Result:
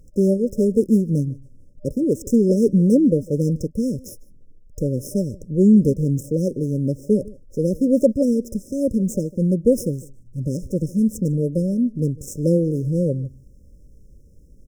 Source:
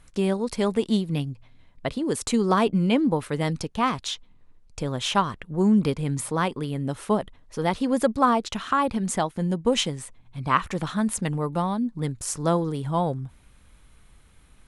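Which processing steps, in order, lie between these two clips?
median filter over 9 samples; echo from a far wall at 26 m, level -22 dB; FFT band-reject 600–5100 Hz; trim +6.5 dB

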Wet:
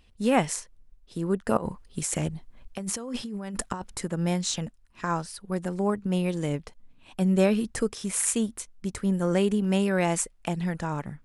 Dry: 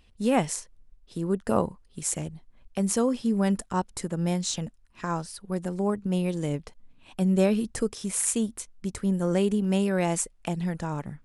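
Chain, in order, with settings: dynamic bell 1.7 kHz, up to +4 dB, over -45 dBFS, Q 0.7; 1.57–3.95 s: compressor with a negative ratio -32 dBFS, ratio -1

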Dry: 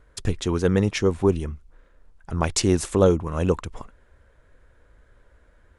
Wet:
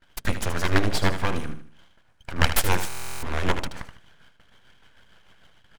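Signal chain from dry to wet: one-sided wavefolder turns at -15 dBFS; hum notches 60/120/180/240/300/360/420/480 Hz; gate with hold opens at -47 dBFS; high-pass 81 Hz 12 dB/octave; peaking EQ 1.7 kHz +9.5 dB 1.2 oct; comb 1.3 ms, depth 53%; full-wave rectifier; tremolo 6.6 Hz, depth 57%; on a send: feedback delay 77 ms, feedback 37%, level -10 dB; on the sum: buffer glitch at 2.88 s, samples 1024, times 14; trim +3 dB

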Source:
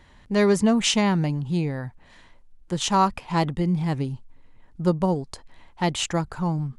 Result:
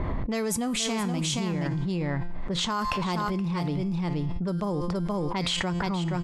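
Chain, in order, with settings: level-controlled noise filter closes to 700 Hz, open at -16 dBFS; treble shelf 3.5 kHz +8.5 dB; feedback comb 160 Hz, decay 0.8 s, harmonics all, mix 60%; delay 516 ms -7.5 dB; speed mistake 44.1 kHz file played as 48 kHz; level flattener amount 100%; trim -5.5 dB

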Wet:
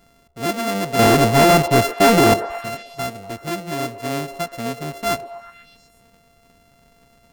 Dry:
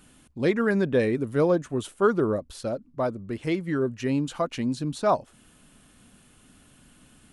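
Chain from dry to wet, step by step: sorted samples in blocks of 64 samples; 0.99–2.34 s: waveshaping leveller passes 5; repeats whose band climbs or falls 122 ms, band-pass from 510 Hz, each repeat 0.7 oct, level -9.5 dB

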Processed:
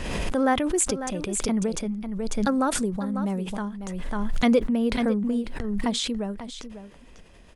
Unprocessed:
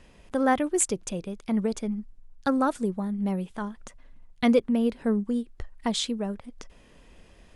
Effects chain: delay 547 ms -12 dB; swell ahead of each attack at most 25 dB/s

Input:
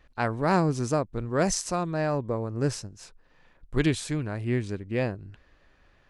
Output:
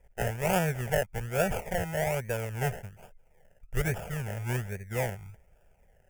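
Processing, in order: decimation with a swept rate 30×, swing 60% 1.2 Hz; static phaser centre 1.1 kHz, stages 6

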